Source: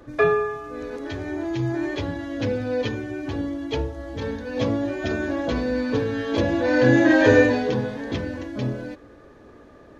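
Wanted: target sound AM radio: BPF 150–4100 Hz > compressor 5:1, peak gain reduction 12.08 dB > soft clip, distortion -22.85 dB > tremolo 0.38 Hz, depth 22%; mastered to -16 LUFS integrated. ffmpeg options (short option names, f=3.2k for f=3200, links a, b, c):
-af "highpass=150,lowpass=4.1k,acompressor=threshold=-24dB:ratio=5,asoftclip=threshold=-18.5dB,tremolo=f=0.38:d=0.22,volume=15dB"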